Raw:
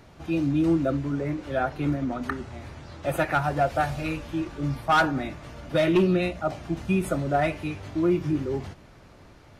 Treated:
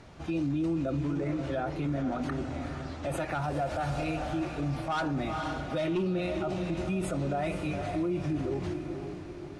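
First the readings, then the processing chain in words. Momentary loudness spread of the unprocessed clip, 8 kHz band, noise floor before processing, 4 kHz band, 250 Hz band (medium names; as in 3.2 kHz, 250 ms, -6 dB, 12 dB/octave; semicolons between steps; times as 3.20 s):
11 LU, -3.5 dB, -51 dBFS, -5.5 dB, -5.0 dB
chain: dynamic bell 1.7 kHz, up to -5 dB, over -40 dBFS, Q 1.6; low-pass 9.9 kHz 24 dB/octave; echo that smears into a reverb 474 ms, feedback 48%, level -11 dB; peak limiter -23.5 dBFS, peak gain reduction 10 dB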